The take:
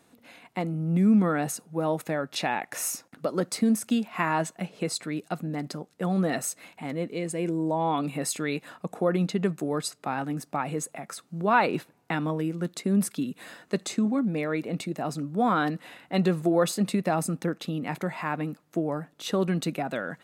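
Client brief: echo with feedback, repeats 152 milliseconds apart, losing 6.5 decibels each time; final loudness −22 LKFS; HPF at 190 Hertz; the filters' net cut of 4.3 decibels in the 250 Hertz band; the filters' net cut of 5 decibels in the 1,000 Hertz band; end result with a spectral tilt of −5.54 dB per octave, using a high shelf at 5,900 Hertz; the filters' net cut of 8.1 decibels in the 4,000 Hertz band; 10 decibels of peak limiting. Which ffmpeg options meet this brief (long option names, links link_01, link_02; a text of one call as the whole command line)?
ffmpeg -i in.wav -af "highpass=190,equalizer=frequency=250:width_type=o:gain=-3,equalizer=frequency=1000:width_type=o:gain=-6,equalizer=frequency=4000:width_type=o:gain=-7,highshelf=frequency=5900:gain=-8,alimiter=limit=-22.5dB:level=0:latency=1,aecho=1:1:152|304|456|608|760|912:0.473|0.222|0.105|0.0491|0.0231|0.0109,volume=11.5dB" out.wav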